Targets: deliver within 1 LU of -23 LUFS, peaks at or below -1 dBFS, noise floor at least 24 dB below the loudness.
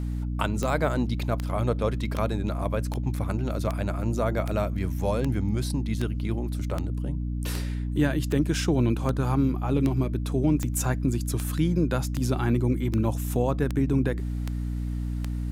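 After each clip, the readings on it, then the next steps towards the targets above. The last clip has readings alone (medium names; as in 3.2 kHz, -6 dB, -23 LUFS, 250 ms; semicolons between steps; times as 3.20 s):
clicks found 20; hum 60 Hz; highest harmonic 300 Hz; hum level -27 dBFS; loudness -27.0 LUFS; peak level -10.0 dBFS; loudness target -23.0 LUFS
-> de-click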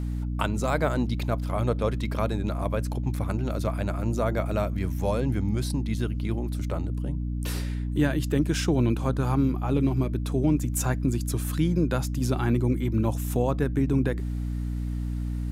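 clicks found 0; hum 60 Hz; highest harmonic 300 Hz; hum level -27 dBFS
-> hum notches 60/120/180/240/300 Hz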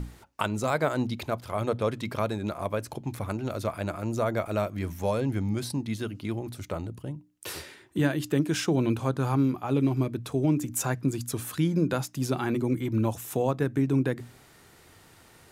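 hum not found; loudness -29.0 LUFS; peak level -10.0 dBFS; loudness target -23.0 LUFS
-> trim +6 dB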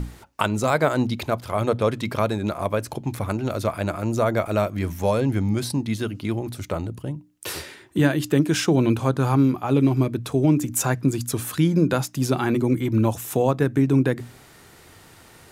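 loudness -23.0 LUFS; peak level -4.0 dBFS; noise floor -50 dBFS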